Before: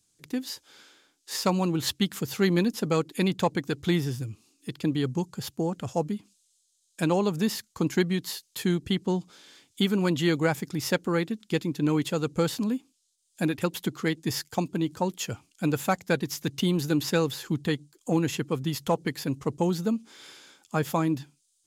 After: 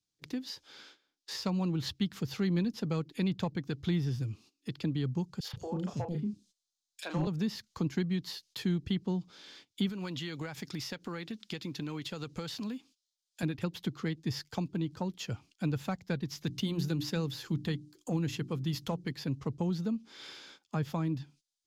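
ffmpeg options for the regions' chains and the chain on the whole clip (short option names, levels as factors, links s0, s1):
-filter_complex "[0:a]asettb=1/sr,asplit=3[s0][s1][s2];[s0]atrim=end=5.404[s3];[s1]atrim=start=5.4:end=7.27,asetpts=PTS-STARTPTS,afade=t=in:d=0.004:c=qsin,afade=t=out:st=1.866:d=0.004:c=qsin,asplit=2[s4][s5];[s5]adelay=33,volume=0.501[s6];[s4][s6]amix=inputs=2:normalize=0,atrim=end_sample=82467,asoftclip=type=hard:threshold=0.141,acrossover=split=430|2900[s7][s8][s9];[s8]adelay=40[s10];[s7]adelay=130[s11];[s11][s10][s9]amix=inputs=3:normalize=0,atrim=end_sample=82467[s12];[s2]atrim=start=7.266[s13];[s3][s12]acrossfade=d=0.004:c1=hsin:c2=qsin[s14];[s14][s13]acrossfade=d=0.004:c1=qsin:c2=hsin,asettb=1/sr,asplit=3[s15][s16][s17];[s15]atrim=end=9.894[s18];[s16]atrim=start=9.89:end=13.43,asetpts=PTS-STARTPTS,afade=t=in:d=0.004:c=qsin,afade=t=out:st=3.536:d=0.004:c=qsin,tiltshelf=f=900:g=-4.5,acompressor=threshold=0.0316:ratio=5:attack=3.2:release=140:knee=1:detection=peak,acrusher=bits=9:mode=log:mix=0:aa=0.000001[s19];[s17]atrim=start=13.426[s20];[s18][s19]acrossfade=d=0.004:c1=hsin:c2=qsin[s21];[s21][s20]acrossfade=d=0.004:c1=qsin:c2=hsin,asettb=1/sr,asplit=3[s22][s23][s24];[s22]atrim=end=16.464[s25];[s23]atrim=start=16.46:end=19.12,asetpts=PTS-STARTPTS,afade=t=in:d=0.004:c=qsin,afade=t=out:st=2.656:d=0.004:c=qsin,highshelf=f=6800:g=8,bandreject=f=60:t=h:w=6,bandreject=f=120:t=h:w=6,bandreject=f=180:t=h:w=6,bandreject=f=240:t=h:w=6,bandreject=f=300:t=h:w=6,bandreject=f=360:t=h:w=6[s26];[s24]atrim=start=19.116[s27];[s25][s26]acrossfade=d=0.004:c1=hsin:c2=qsin[s28];[s28][s27]acrossfade=d=0.004:c1=qsin:c2=hsin,agate=range=0.178:threshold=0.00178:ratio=16:detection=peak,highshelf=f=6500:t=q:w=1.5:g=-8.5,acrossover=split=180[s29][s30];[s30]acompressor=threshold=0.00891:ratio=2.5[s31];[s29][s31]amix=inputs=2:normalize=0"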